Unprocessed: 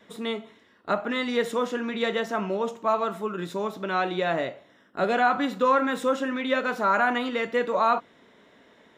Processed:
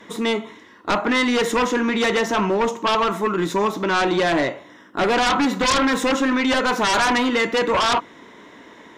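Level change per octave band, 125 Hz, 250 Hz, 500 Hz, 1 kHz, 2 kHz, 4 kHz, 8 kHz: +8.0, +8.5, +4.5, +5.0, +7.0, +12.0, +17.0 dB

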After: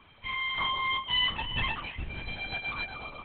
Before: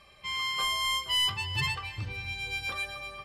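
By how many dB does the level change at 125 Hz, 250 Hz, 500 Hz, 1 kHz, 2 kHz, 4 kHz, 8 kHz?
-3.5 dB, +4.0 dB, +1.0 dB, +1.5 dB, +1.0 dB, -2.0 dB, under -40 dB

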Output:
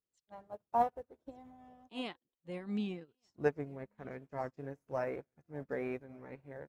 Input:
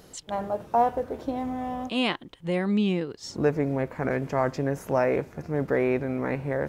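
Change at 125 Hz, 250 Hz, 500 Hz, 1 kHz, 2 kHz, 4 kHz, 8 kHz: -16.5 dB, -15.0 dB, -13.0 dB, -10.0 dB, -14.5 dB, -16.5 dB, under -20 dB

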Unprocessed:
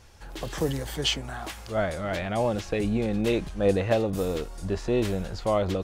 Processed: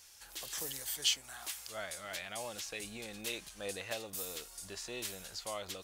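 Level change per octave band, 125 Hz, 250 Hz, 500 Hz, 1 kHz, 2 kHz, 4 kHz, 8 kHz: -26.0, -23.5, -19.0, -15.0, -8.0, -4.5, +2.0 dB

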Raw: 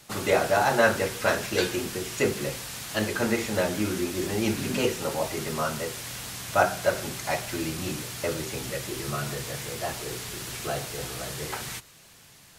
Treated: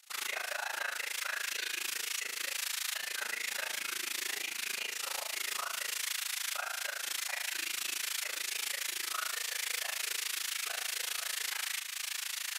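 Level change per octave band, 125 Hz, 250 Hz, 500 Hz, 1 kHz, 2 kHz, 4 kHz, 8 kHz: under -40 dB, -31.5 dB, -24.5 dB, -13.5 dB, -4.5 dB, -0.5 dB, -1.0 dB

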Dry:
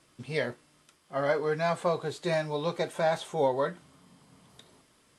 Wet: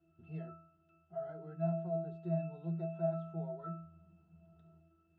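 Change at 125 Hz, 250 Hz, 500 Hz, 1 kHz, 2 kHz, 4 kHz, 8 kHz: -1.5 dB, -4.0 dB, -11.5 dB, -14.5 dB, -28.0 dB, under -35 dB, under -30 dB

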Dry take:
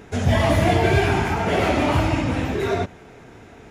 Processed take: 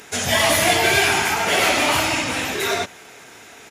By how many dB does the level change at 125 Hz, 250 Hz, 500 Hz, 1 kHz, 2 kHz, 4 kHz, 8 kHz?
-11.5, -5.5, -1.0, +2.0, +7.5, +11.0, +16.0 dB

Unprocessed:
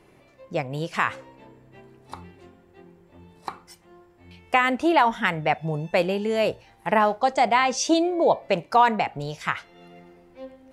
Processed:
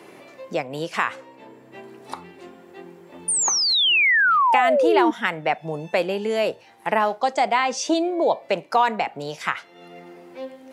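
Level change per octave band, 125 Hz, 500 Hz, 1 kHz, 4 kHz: -6.0, +2.0, +1.0, +10.0 dB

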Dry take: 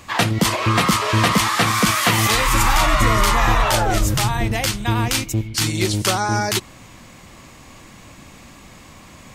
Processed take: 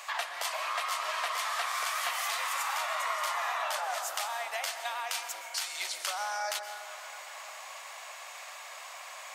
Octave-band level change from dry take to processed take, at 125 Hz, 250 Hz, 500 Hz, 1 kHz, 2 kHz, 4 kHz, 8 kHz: under -40 dB, under -40 dB, -16.5 dB, -13.0 dB, -12.5 dB, -13.5 dB, -13.5 dB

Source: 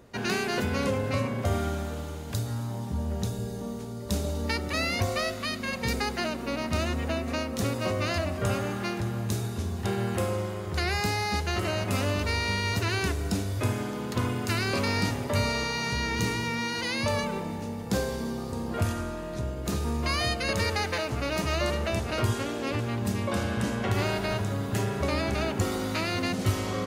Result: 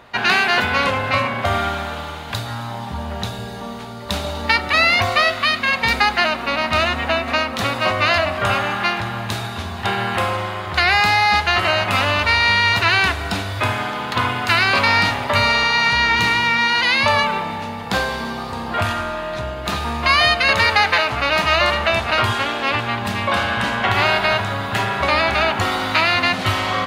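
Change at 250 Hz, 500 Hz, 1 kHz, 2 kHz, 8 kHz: +2.0, +7.0, +15.5, +16.0, +3.0 dB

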